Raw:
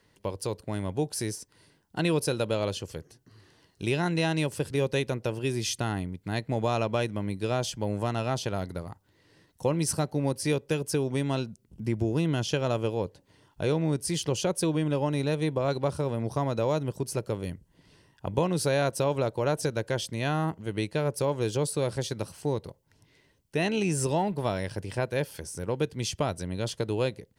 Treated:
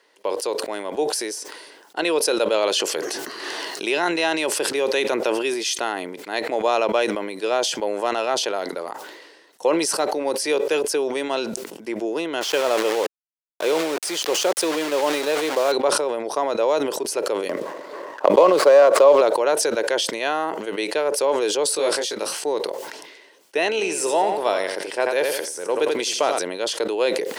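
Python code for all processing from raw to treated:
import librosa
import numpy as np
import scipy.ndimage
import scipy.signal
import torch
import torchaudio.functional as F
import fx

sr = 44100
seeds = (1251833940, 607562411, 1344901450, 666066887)

y = fx.chain(x, sr, fx.peak_eq(hz=490.0, db=-4.0, octaves=0.37),
    fx.env_flatten(amount_pct=70), at=(2.54, 5.54))
y = fx.chain(y, sr, fx.lowpass(hz=11000.0, slope=12),
    fx.quant_dither(seeds[0], bits=6, dither='none'), at=(12.41, 15.72))
y = fx.chain(y, sr, fx.median_filter(points=15),
    fx.small_body(hz=(580.0, 1100.0), ring_ms=25, db=10),
    fx.band_squash(depth_pct=70), at=(17.49, 19.21))
y = fx.chain(y, sr, fx.peak_eq(hz=730.0, db=-3.0, octaves=2.3),
    fx.doubler(ms=19.0, db=-2.5), at=(21.74, 22.44))
y = fx.chain(y, sr, fx.high_shelf(hz=10000.0, db=4.5),
    fx.echo_feedback(ms=85, feedback_pct=32, wet_db=-9), at=(23.7, 26.39))
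y = scipy.signal.sosfilt(scipy.signal.butter(4, 380.0, 'highpass', fs=sr, output='sos'), y)
y = fx.high_shelf(y, sr, hz=10000.0, db=-9.5)
y = fx.sustainer(y, sr, db_per_s=40.0)
y = y * 10.0 ** (8.0 / 20.0)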